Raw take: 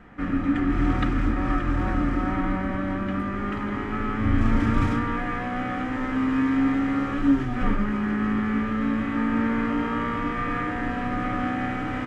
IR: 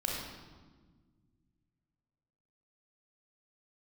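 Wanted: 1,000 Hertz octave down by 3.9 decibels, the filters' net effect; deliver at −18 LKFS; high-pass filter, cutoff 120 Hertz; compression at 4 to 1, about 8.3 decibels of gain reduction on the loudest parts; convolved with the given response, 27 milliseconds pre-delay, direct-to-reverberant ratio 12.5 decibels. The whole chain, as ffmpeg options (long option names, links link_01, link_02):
-filter_complex "[0:a]highpass=120,equalizer=frequency=1000:width_type=o:gain=-5.5,acompressor=threshold=-25dB:ratio=4,asplit=2[link_01][link_02];[1:a]atrim=start_sample=2205,adelay=27[link_03];[link_02][link_03]afir=irnorm=-1:irlink=0,volume=-17.5dB[link_04];[link_01][link_04]amix=inputs=2:normalize=0,volume=11dB"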